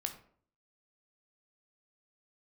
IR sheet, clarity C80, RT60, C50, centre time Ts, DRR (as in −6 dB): 14.5 dB, 0.55 s, 10.5 dB, 11 ms, 5.0 dB